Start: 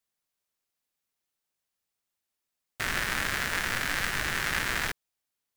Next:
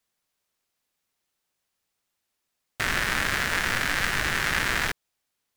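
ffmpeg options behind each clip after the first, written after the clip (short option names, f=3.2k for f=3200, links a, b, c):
-filter_complex "[0:a]highshelf=f=8.6k:g=-4.5,asplit=2[a][b];[b]alimiter=limit=-21dB:level=0:latency=1:release=169,volume=2dB[c];[a][c]amix=inputs=2:normalize=0"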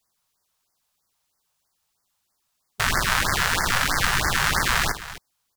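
-filter_complex "[0:a]equalizer=f=250:t=o:w=1:g=-4,equalizer=f=500:t=o:w=1:g=-4,equalizer=f=1k:t=o:w=1:g=4,equalizer=f=2k:t=o:w=1:g=-6,asplit=2[a][b];[b]aecho=0:1:55|262:0.224|0.188[c];[a][c]amix=inputs=2:normalize=0,afftfilt=real='re*(1-between(b*sr/1024,260*pow(3200/260,0.5+0.5*sin(2*PI*3.1*pts/sr))/1.41,260*pow(3200/260,0.5+0.5*sin(2*PI*3.1*pts/sr))*1.41))':imag='im*(1-between(b*sr/1024,260*pow(3200/260,0.5+0.5*sin(2*PI*3.1*pts/sr))/1.41,260*pow(3200/260,0.5+0.5*sin(2*PI*3.1*pts/sr))*1.41))':win_size=1024:overlap=0.75,volume=6.5dB"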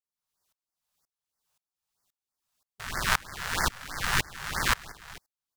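-af "aeval=exprs='val(0)*pow(10,-28*if(lt(mod(-1.9*n/s,1),2*abs(-1.9)/1000),1-mod(-1.9*n/s,1)/(2*abs(-1.9)/1000),(mod(-1.9*n/s,1)-2*abs(-1.9)/1000)/(1-2*abs(-1.9)/1000))/20)':c=same"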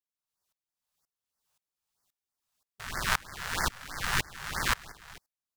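-af "dynaudnorm=f=450:g=5:m=6dB,volume=-5.5dB"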